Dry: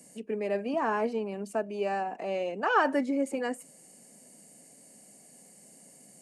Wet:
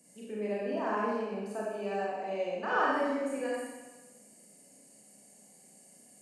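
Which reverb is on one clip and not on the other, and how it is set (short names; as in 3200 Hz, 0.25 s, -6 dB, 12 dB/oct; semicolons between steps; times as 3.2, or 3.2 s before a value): Schroeder reverb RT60 1.2 s, combs from 30 ms, DRR -5.5 dB; gain -9.5 dB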